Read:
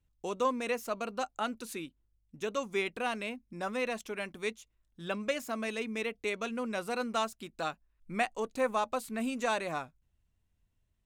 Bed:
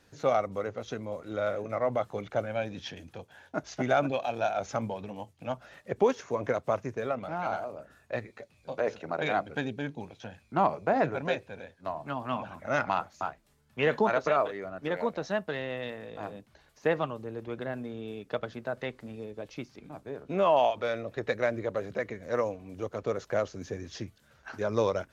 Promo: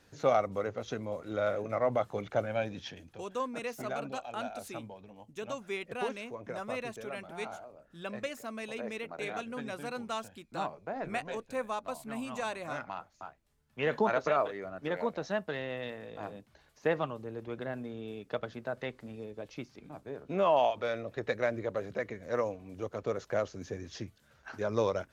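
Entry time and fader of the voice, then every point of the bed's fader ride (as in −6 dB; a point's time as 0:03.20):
2.95 s, −5.0 dB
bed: 0:02.65 −0.5 dB
0:03.60 −12 dB
0:13.39 −12 dB
0:14.00 −2.5 dB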